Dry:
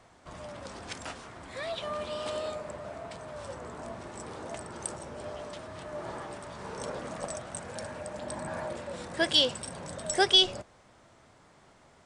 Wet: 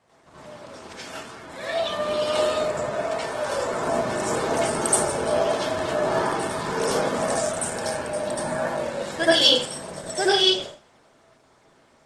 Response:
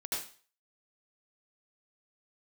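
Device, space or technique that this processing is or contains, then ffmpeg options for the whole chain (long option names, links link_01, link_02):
far-field microphone of a smart speaker: -filter_complex "[0:a]asettb=1/sr,asplit=3[link_01][link_02][link_03];[link_01]atrim=end=2.944[link_04];[link_02]atrim=start=2.94:end=3.72,asetpts=PTS-STARTPTS,afade=type=in:duration=0.004:curve=qsin,afade=type=out:start_time=0.776:duration=0.004:curve=qsin,equalizer=frequency=140:width_type=o:width=1.9:gain=-8[link_05];[link_03]atrim=start=3.716[link_06];[link_04][link_05]acrossfade=duration=0.004:curve1=hsin:curve2=qsin[link_07];[link_07][link_06]acrossfade=duration=0.004:curve1=qsin:curve2=hsin[link_08];[1:a]atrim=start_sample=2205[link_09];[link_08][link_09]afir=irnorm=-1:irlink=0,highpass=100,dynaudnorm=framelen=390:gausssize=13:maxgain=14dB" -ar 48000 -c:a libopus -b:a 16k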